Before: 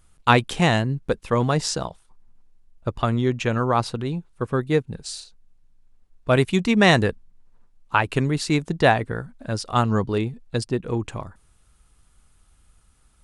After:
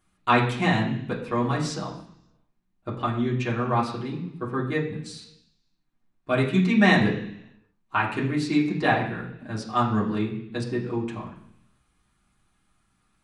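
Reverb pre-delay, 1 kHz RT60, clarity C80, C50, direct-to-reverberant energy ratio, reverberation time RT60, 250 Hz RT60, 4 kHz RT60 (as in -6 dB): 3 ms, 0.70 s, 10.0 dB, 7.5 dB, -5.5 dB, 0.70 s, 0.90 s, 0.90 s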